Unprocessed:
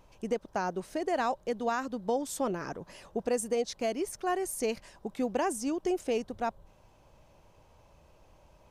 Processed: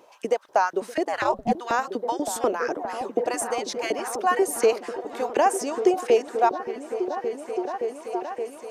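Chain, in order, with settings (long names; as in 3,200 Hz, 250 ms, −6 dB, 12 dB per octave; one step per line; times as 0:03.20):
auto-filter high-pass saw up 4.1 Hz 320–2,000 Hz
echo whose low-pass opens from repeat to repeat 571 ms, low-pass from 200 Hz, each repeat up 1 octave, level −3 dB
0:01.04–0:01.51: ring modulation 71 Hz → 270 Hz
level +6.5 dB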